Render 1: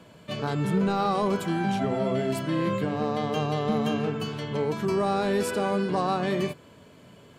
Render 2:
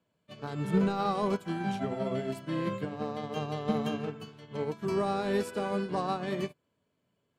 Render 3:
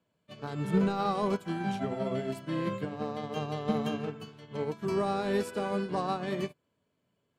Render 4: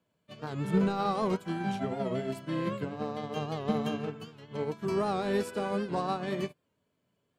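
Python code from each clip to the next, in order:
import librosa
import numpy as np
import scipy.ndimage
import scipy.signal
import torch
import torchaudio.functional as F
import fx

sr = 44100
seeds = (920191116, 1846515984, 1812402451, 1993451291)

y1 = fx.upward_expand(x, sr, threshold_db=-39.0, expansion=2.5)
y2 = y1
y3 = fx.record_warp(y2, sr, rpm=78.0, depth_cents=100.0)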